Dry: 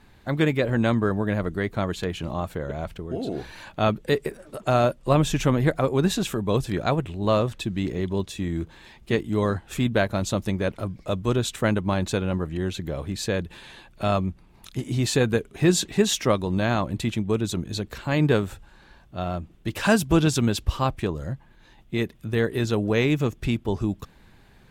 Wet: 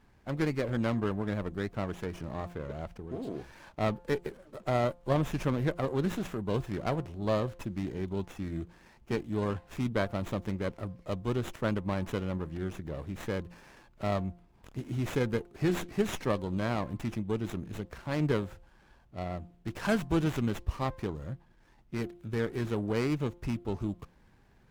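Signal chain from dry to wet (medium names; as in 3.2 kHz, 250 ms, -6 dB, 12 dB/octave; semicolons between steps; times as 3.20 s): de-hum 174.5 Hz, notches 6; sliding maximum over 9 samples; trim -8 dB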